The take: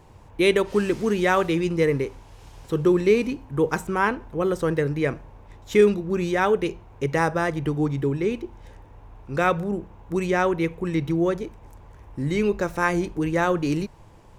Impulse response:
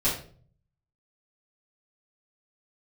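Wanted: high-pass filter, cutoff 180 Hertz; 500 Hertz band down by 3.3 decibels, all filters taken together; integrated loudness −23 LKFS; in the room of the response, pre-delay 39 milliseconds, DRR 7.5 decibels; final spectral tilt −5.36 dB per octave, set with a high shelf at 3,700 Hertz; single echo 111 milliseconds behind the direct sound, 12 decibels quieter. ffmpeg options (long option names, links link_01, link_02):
-filter_complex "[0:a]highpass=180,equalizer=frequency=500:width_type=o:gain=-4,highshelf=frequency=3700:gain=-7.5,aecho=1:1:111:0.251,asplit=2[link_01][link_02];[1:a]atrim=start_sample=2205,adelay=39[link_03];[link_02][link_03]afir=irnorm=-1:irlink=0,volume=-18dB[link_04];[link_01][link_04]amix=inputs=2:normalize=0,volume=2.5dB"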